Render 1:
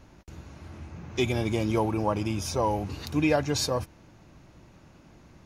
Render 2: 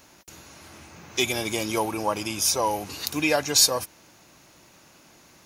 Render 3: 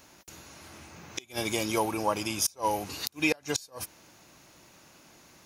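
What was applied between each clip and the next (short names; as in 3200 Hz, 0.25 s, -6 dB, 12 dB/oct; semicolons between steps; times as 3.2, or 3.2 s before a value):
RIAA curve recording; gain +3 dB
flipped gate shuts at -11 dBFS, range -29 dB; gain -2 dB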